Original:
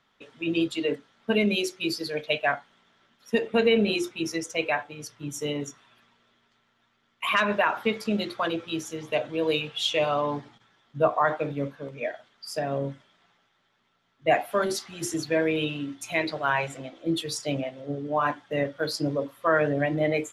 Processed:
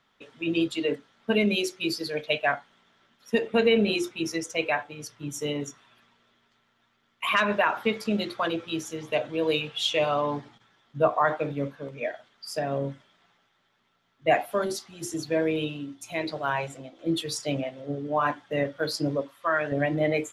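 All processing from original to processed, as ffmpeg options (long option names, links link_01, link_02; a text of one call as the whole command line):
ffmpeg -i in.wav -filter_complex "[0:a]asettb=1/sr,asplit=3[link_01][link_02][link_03];[link_01]atrim=end=14.454[link_04];[link_02]atrim=start=14.45:end=16.99,asetpts=PTS-STARTPTS,afade=type=in:duration=0.004:curve=qsin,afade=type=out:start_time=2.536:duration=0.004:curve=qsin,equalizer=frequency=1900:width_type=o:width=1.6:gain=-5,tremolo=f=1:d=0.35[link_05];[link_03]atrim=start=16.986[link_06];[link_04][link_05]acrossfade=duration=0.004:curve1=hsin:curve2=qsin[link_07];[link_07][link_06]acrossfade=duration=0.004:curve1=qsin:curve2=hsin,asettb=1/sr,asplit=3[link_08][link_09][link_10];[link_08]atrim=end=19.214[link_11];[link_09]atrim=start=19.21:end=19.72,asetpts=PTS-STARTPTS,afade=type=in:duration=0.004:curve=qsin,afade=type=out:start_time=0.506:duration=0.004:curve=qsin,lowpass=10000,lowshelf=frequency=480:gain=-10.5,bandreject=frequency=480:width=6.1[link_12];[link_10]atrim=start=19.716[link_13];[link_11][link_12]acrossfade=duration=0.004:curve1=hsin:curve2=qsin[link_14];[link_14][link_13]acrossfade=duration=0.004:curve1=qsin:curve2=hsin" out.wav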